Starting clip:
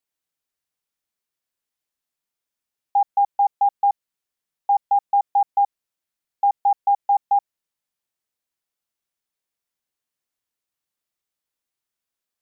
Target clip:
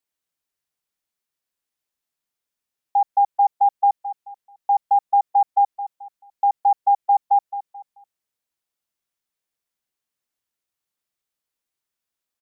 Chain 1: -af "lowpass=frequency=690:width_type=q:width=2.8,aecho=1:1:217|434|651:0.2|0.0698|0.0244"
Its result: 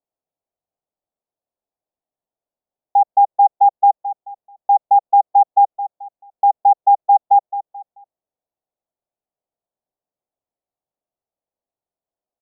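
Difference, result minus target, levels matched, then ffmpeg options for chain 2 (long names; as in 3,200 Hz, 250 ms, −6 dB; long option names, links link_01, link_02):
500 Hz band +3.0 dB
-af "aecho=1:1:217|434|651:0.2|0.0698|0.0244"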